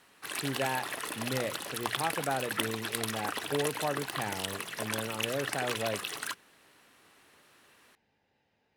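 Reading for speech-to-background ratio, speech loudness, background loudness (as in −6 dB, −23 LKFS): −1.0 dB, −36.5 LKFS, −35.5 LKFS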